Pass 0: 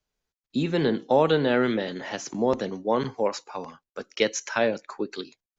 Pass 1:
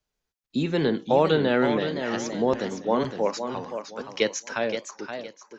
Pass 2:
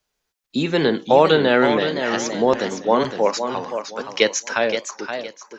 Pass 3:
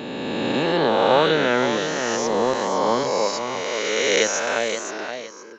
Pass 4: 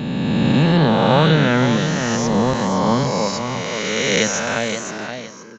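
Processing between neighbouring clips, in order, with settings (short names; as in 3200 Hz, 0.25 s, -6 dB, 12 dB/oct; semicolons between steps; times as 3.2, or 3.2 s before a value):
ending faded out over 1.47 s; warbling echo 0.518 s, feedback 30%, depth 155 cents, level -8 dB
low shelf 300 Hz -8.5 dB; gain +8.5 dB
spectral swells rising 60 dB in 2.77 s; gain -6.5 dB
resonant low shelf 250 Hz +12.5 dB, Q 1.5; echo 0.162 s -17 dB; gain +2 dB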